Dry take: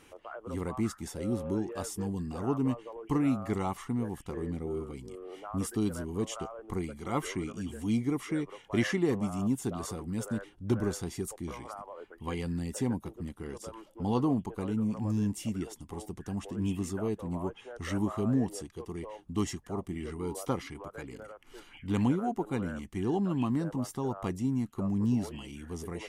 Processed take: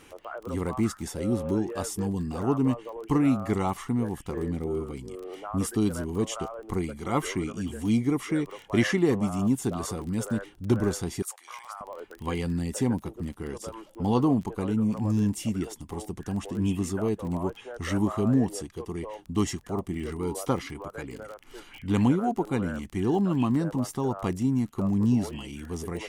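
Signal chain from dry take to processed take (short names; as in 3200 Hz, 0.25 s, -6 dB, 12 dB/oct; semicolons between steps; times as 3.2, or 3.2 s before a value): 11.22–11.81 HPF 900 Hz 24 dB/oct; crackle 19/s -40 dBFS; gain +5 dB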